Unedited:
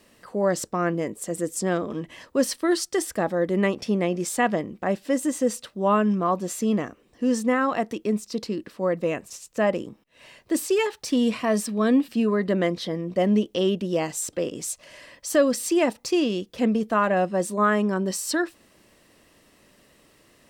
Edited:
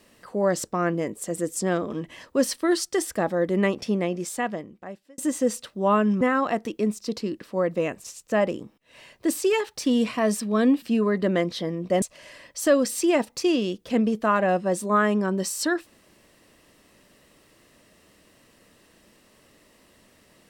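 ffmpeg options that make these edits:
-filter_complex "[0:a]asplit=4[s0][s1][s2][s3];[s0]atrim=end=5.18,asetpts=PTS-STARTPTS,afade=t=out:st=3.79:d=1.39[s4];[s1]atrim=start=5.18:end=6.212,asetpts=PTS-STARTPTS,afade=t=in:d=0.004:c=hsin[s5];[s2]atrim=start=7.468:end=13.282[s6];[s3]atrim=start=14.698[s7];[s4][s5]concat=n=2:v=0:a=1[s8];[s8][s6]acrossfade=d=0.004:c1=hsin:c2=hsin[s9];[s9][s7]acrossfade=d=0.004:c1=hsin:c2=hsin"

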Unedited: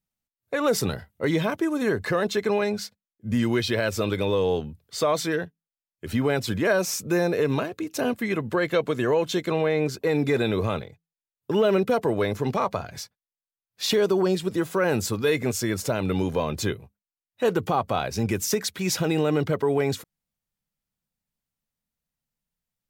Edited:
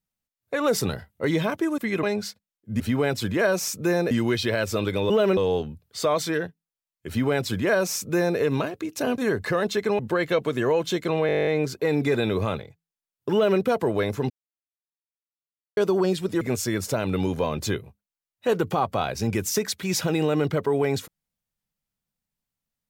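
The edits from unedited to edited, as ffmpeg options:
-filter_complex "[0:a]asplit=22[s0][s1][s2][s3][s4][s5][s6][s7][s8][s9][s10][s11][s12][s13][s14][s15][s16][s17][s18][s19][s20][s21];[s0]atrim=end=1.782[s22];[s1]atrim=start=8.158:end=8.412[s23];[s2]atrim=start=2.588:end=3.362[s24];[s3]atrim=start=6.058:end=7.372[s25];[s4]atrim=start=3.358:end=4.352[s26];[s5]atrim=start=11.548:end=11.822[s27];[s6]atrim=start=4.348:end=8.162[s28];[s7]atrim=start=1.778:end=2.592[s29];[s8]atrim=start=8.408:end=9.712[s30];[s9]atrim=start=9.688:end=9.712[s31];[s10]atrim=start=9.688:end=9.712[s32];[s11]atrim=start=9.688:end=9.712[s33];[s12]atrim=start=9.688:end=9.712[s34];[s13]atrim=start=9.688:end=9.712[s35];[s14]atrim=start=9.688:end=9.712[s36];[s15]atrim=start=9.688:end=9.712[s37];[s16]atrim=start=9.688:end=9.712[s38];[s17]atrim=start=9.688:end=9.712[s39];[s18]atrim=start=9.688:end=12.52,asetpts=PTS-STARTPTS,afade=t=out:st=2.828:d=0.004:c=hsin[s40];[s19]atrim=start=12.52:end=13.99,asetpts=PTS-STARTPTS,volume=0[s41];[s20]atrim=start=13.99:end=14.632,asetpts=PTS-STARTPTS,afade=t=in:d=0.004:c=hsin[s42];[s21]atrim=start=15.368[s43];[s22][s23]acrossfade=d=0.004:c1=hsin:c2=hsin[s44];[s44][s24]acrossfade=d=0.004:c1=hsin:c2=hsin[s45];[s45][s25]acrossfade=d=0.004:c1=hsin:c2=hsin[s46];[s46][s26]acrossfade=d=0.004:c1=hsin:c2=hsin[s47];[s47][s27]acrossfade=d=0.004:c1=hsin:c2=hsin[s48];[s48][s28]acrossfade=d=0.004:c1=hsin:c2=hsin[s49];[s49][s29]acrossfade=d=0.004:c1=hsin:c2=hsin[s50];[s50][s30]acrossfade=d=0.004:c1=hsin:c2=hsin[s51];[s51][s31]acrossfade=d=0.004:c1=hsin:c2=hsin[s52];[s52][s32]acrossfade=d=0.004:c1=hsin:c2=hsin[s53];[s53][s33]acrossfade=d=0.004:c1=hsin:c2=hsin[s54];[s54][s34]acrossfade=d=0.004:c1=hsin:c2=hsin[s55];[s55][s35]acrossfade=d=0.004:c1=hsin:c2=hsin[s56];[s56][s36]acrossfade=d=0.004:c1=hsin:c2=hsin[s57];[s57][s37]acrossfade=d=0.004:c1=hsin:c2=hsin[s58];[s58][s38]acrossfade=d=0.004:c1=hsin:c2=hsin[s59];[s59][s39]acrossfade=d=0.004:c1=hsin:c2=hsin[s60];[s40][s41][s42]concat=n=3:v=0:a=1[s61];[s60][s61]acrossfade=d=0.004:c1=hsin:c2=hsin[s62];[s62][s43]acrossfade=d=0.004:c1=hsin:c2=hsin"

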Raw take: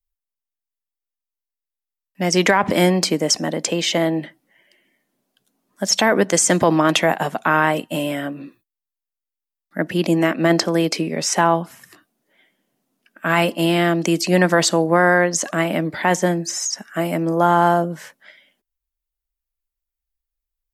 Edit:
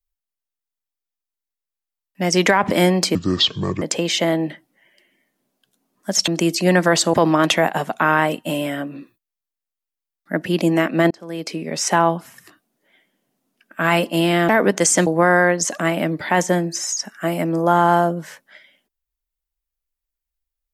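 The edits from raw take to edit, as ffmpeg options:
-filter_complex "[0:a]asplit=8[s0][s1][s2][s3][s4][s5][s6][s7];[s0]atrim=end=3.154[s8];[s1]atrim=start=3.15:end=3.55,asetpts=PTS-STARTPTS,asetrate=26460,aresample=44100[s9];[s2]atrim=start=3.546:end=6.012[s10];[s3]atrim=start=13.938:end=14.802[s11];[s4]atrim=start=6.588:end=10.56,asetpts=PTS-STARTPTS,afade=t=out:st=3.968:d=0.004:c=hsin[s12];[s5]atrim=start=10.56:end=13.942,asetpts=PTS-STARTPTS,afade=t=in:d=0.81[s13];[s6]atrim=start=6.008:end=6.592[s14];[s7]atrim=start=14.798[s15];[s8][s9]acrossfade=d=0.004:c1=hsin:c2=hsin[s16];[s16][s10]acrossfade=d=0.004:c1=hsin:c2=hsin[s17];[s17][s11]acrossfade=d=0.004:c1=hsin:c2=hsin[s18];[s12][s13]concat=n=2:v=0:a=1[s19];[s18][s19]acrossfade=d=0.004:c1=hsin:c2=hsin[s20];[s20][s14]acrossfade=d=0.004:c1=hsin:c2=hsin[s21];[s21][s15]acrossfade=d=0.004:c1=hsin:c2=hsin"

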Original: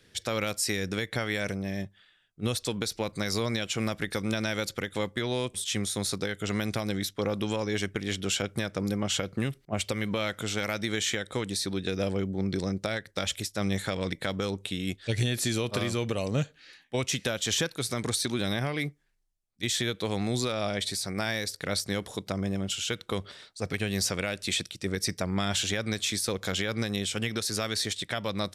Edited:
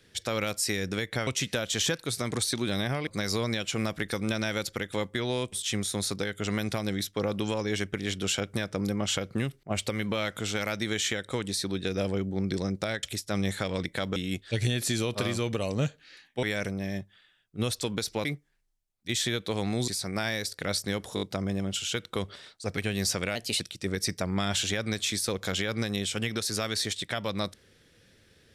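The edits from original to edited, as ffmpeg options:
-filter_complex "[0:a]asplit=13[s0][s1][s2][s3][s4][s5][s6][s7][s8][s9][s10][s11][s12];[s0]atrim=end=1.272[s13];[s1]atrim=start=16.988:end=18.792[s14];[s2]atrim=start=3.088:end=13.052[s15];[s3]atrim=start=13.298:end=14.432[s16];[s4]atrim=start=14.718:end=16.992[s17];[s5]atrim=start=1.268:end=3.092[s18];[s6]atrim=start=18.788:end=20.422[s19];[s7]atrim=start=20.898:end=22.192[s20];[s8]atrim=start=22.168:end=22.192[s21];[s9]atrim=start=22.168:end=22.192[s22];[s10]atrim=start=22.168:end=24.314[s23];[s11]atrim=start=24.31:end=24.6,asetpts=PTS-STARTPTS,asetrate=51156,aresample=44100[s24];[s12]atrim=start=24.596[s25];[s13][s14]acrossfade=d=0.004:c1=hsin:c2=hsin[s26];[s26][s15]acrossfade=d=0.004:c1=hsin:c2=hsin[s27];[s27][s16]acrossfade=d=0.004:c1=hsin:c2=hsin[s28];[s28][s17]acrossfade=d=0.004:c1=hsin:c2=hsin[s29];[s29][s18]acrossfade=d=0.004:c1=hsin:c2=hsin[s30];[s30][s19]acrossfade=d=0.004:c1=hsin:c2=hsin[s31];[s31][s20]acrossfade=d=0.004:c1=hsin:c2=hsin[s32];[s32][s21]acrossfade=d=0.004:c1=hsin:c2=hsin[s33];[s33][s22]acrossfade=d=0.004:c1=hsin:c2=hsin[s34];[s34][s23]acrossfade=d=0.004:c1=hsin:c2=hsin[s35];[s35][s24]acrossfade=d=0.004:c1=hsin:c2=hsin[s36];[s36][s25]acrossfade=d=0.004:c1=hsin:c2=hsin"

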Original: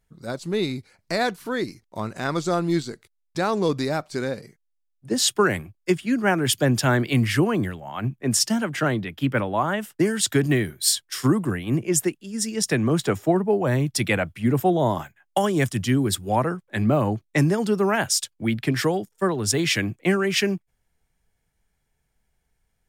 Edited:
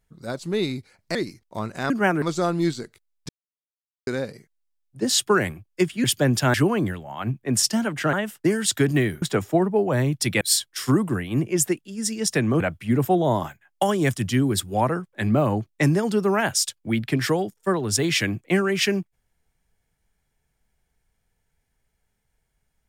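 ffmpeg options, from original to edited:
-filter_complex "[0:a]asplit=12[s0][s1][s2][s3][s4][s5][s6][s7][s8][s9][s10][s11];[s0]atrim=end=1.152[s12];[s1]atrim=start=1.558:end=2.312[s13];[s2]atrim=start=6.128:end=6.452[s14];[s3]atrim=start=2.308:end=3.38,asetpts=PTS-STARTPTS,afade=t=out:st=1.068:d=0.004:c=hsin[s15];[s4]atrim=start=3.38:end=4.16,asetpts=PTS-STARTPTS,volume=0[s16];[s5]atrim=start=4.16:end=6.132,asetpts=PTS-STARTPTS,afade=t=in:d=0.004:c=hsin[s17];[s6]atrim=start=6.448:end=6.952[s18];[s7]atrim=start=7.308:end=8.902[s19];[s8]atrim=start=9.678:end=10.772[s20];[s9]atrim=start=12.958:end=14.152[s21];[s10]atrim=start=10.768:end=12.962[s22];[s11]atrim=start=14.148[s23];[s12][s13]acrossfade=d=0.004:c1=hsin:c2=hsin[s24];[s24][s14]acrossfade=d=0.004:c1=hsin:c2=hsin[s25];[s15][s16][s17]concat=n=3:v=0:a=1[s26];[s25][s26]acrossfade=d=0.004:c1=hsin:c2=hsin[s27];[s27][s18]acrossfade=d=0.004:c1=hsin:c2=hsin[s28];[s28][s19]acrossfade=d=0.004:c1=hsin:c2=hsin[s29];[s29][s20]acrossfade=d=0.004:c1=hsin:c2=hsin[s30];[s30][s21]acrossfade=d=0.004:c1=hsin:c2=hsin[s31];[s31][s22]acrossfade=d=0.004:c1=hsin:c2=hsin[s32];[s32][s23]acrossfade=d=0.004:c1=hsin:c2=hsin"

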